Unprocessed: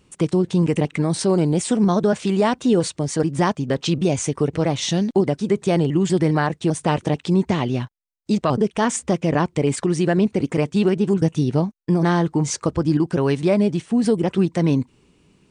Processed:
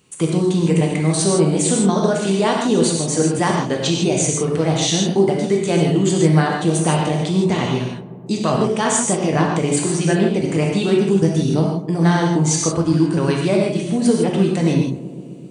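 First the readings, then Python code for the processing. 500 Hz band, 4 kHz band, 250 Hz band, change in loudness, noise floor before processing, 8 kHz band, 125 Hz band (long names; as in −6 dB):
+2.5 dB, +6.0 dB, +2.0 dB, +3.0 dB, −61 dBFS, +9.0 dB, +3.0 dB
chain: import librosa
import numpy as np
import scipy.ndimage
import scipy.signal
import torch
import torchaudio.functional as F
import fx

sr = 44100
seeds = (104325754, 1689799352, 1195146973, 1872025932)

y = scipy.signal.sosfilt(scipy.signal.butter(2, 94.0, 'highpass', fs=sr, output='sos'), x)
y = fx.high_shelf(y, sr, hz=3500.0, db=8.5)
y = fx.notch(y, sr, hz=5300.0, q=8.4)
y = fx.echo_filtered(y, sr, ms=130, feedback_pct=81, hz=1400.0, wet_db=-16.0)
y = fx.rev_gated(y, sr, seeds[0], gate_ms=180, shape='flat', drr_db=-1.0)
y = y * librosa.db_to_amplitude(-1.5)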